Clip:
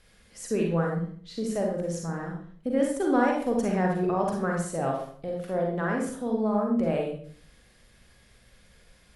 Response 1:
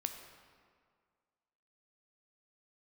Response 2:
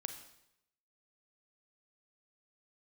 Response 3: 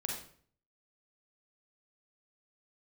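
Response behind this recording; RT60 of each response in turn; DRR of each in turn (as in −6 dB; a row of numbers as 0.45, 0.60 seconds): 3; 2.0, 0.80, 0.55 seconds; 5.5, 7.0, −0.5 decibels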